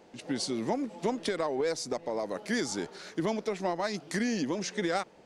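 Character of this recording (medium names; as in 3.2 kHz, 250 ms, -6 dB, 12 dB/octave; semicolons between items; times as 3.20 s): noise floor -57 dBFS; spectral tilt -4.0 dB/octave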